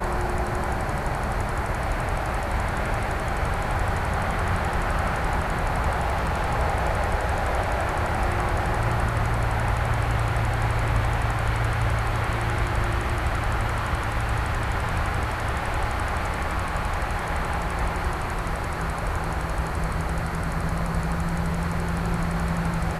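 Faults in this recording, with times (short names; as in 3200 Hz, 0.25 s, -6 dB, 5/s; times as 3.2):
6–6.53 clipped -20 dBFS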